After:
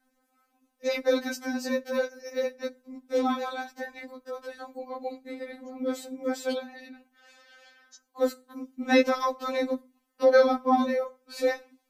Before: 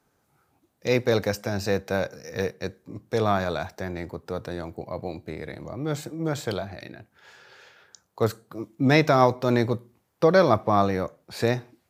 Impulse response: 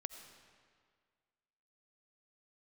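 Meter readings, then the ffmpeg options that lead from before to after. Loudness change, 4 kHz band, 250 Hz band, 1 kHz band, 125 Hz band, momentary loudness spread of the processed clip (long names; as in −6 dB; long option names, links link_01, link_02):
−3.0 dB, −3.0 dB, −3.0 dB, −3.5 dB, below −35 dB, 17 LU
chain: -af "aeval=exprs='val(0)*sin(2*PI*44*n/s)':channel_layout=same,afftfilt=real='re*3.46*eq(mod(b,12),0)':imag='im*3.46*eq(mod(b,12),0)':win_size=2048:overlap=0.75,volume=2dB"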